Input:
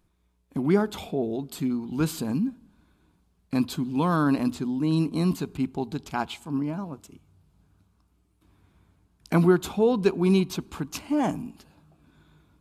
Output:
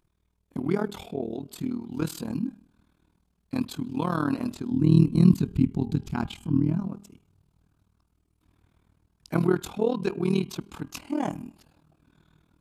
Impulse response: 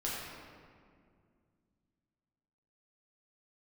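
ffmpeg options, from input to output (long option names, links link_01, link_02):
-filter_complex "[0:a]asplit=3[link_01][link_02][link_03];[link_01]afade=type=out:start_time=4.71:duration=0.02[link_04];[link_02]asubboost=boost=6.5:cutoff=230,afade=type=in:start_time=4.71:duration=0.02,afade=type=out:start_time=6.86:duration=0.02[link_05];[link_03]afade=type=in:start_time=6.86:duration=0.02[link_06];[link_04][link_05][link_06]amix=inputs=3:normalize=0,bandreject=frequency=201.7:width_type=h:width=4,bandreject=frequency=403.4:width_type=h:width=4,bandreject=frequency=605.1:width_type=h:width=4,bandreject=frequency=806.8:width_type=h:width=4,bandreject=frequency=1008.5:width_type=h:width=4,bandreject=frequency=1210.2:width_type=h:width=4,bandreject=frequency=1411.9:width_type=h:width=4,bandreject=frequency=1613.6:width_type=h:width=4,bandreject=frequency=1815.3:width_type=h:width=4,bandreject=frequency=2017:width_type=h:width=4,bandreject=frequency=2218.7:width_type=h:width=4,bandreject=frequency=2420.4:width_type=h:width=4,bandreject=frequency=2622.1:width_type=h:width=4,bandreject=frequency=2823.8:width_type=h:width=4,bandreject=frequency=3025.5:width_type=h:width=4,bandreject=frequency=3227.2:width_type=h:width=4,tremolo=f=39:d=0.889"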